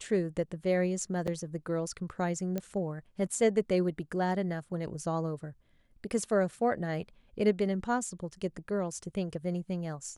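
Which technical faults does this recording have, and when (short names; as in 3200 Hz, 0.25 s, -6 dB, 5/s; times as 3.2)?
1.27–1.28 gap 6.5 ms
2.58 pop -20 dBFS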